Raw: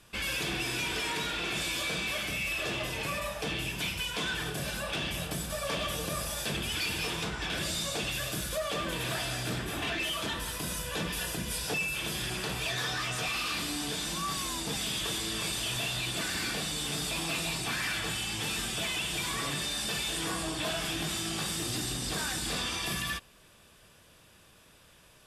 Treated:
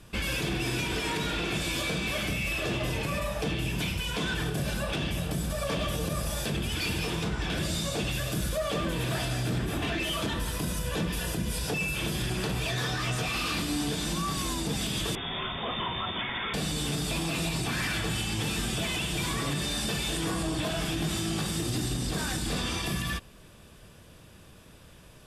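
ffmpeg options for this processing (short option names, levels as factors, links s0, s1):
-filter_complex "[0:a]asettb=1/sr,asplit=3[s0][s1][s2];[s0]atrim=end=15.154[s3];[s1]atrim=start=15.15:end=16.54,asetpts=PTS-STARTPTS,afade=t=in:d=0.004:c=qsin,afade=t=out:st=1.386:d=0.004:c=qsin,lowpass=f=3100:t=q:w=0.5098,lowpass=f=3100:t=q:w=0.6013,lowpass=f=3100:t=q:w=0.9,lowpass=f=3100:t=q:w=2.563,afreqshift=-3700[s4];[s2]atrim=start=16.536[s5];[s3][s4]acrossfade=d=0.004:c1=hsin:c2=qsin[s6];[s6][s5]acrossfade=d=0.004:c1=qsin:c2=hsin,lowshelf=f=490:g=10,alimiter=limit=0.0708:level=0:latency=1:release=113,volume=1.19"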